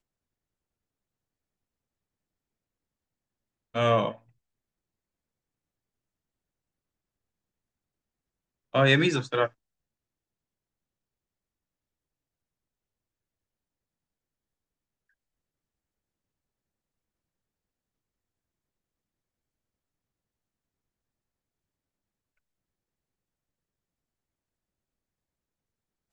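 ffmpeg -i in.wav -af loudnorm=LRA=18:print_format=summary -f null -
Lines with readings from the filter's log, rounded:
Input Integrated:    -25.0 LUFS
Input True Peak:      -8.0 dBTP
Input LRA:             4.9 LU
Input Threshold:     -35.6 LUFS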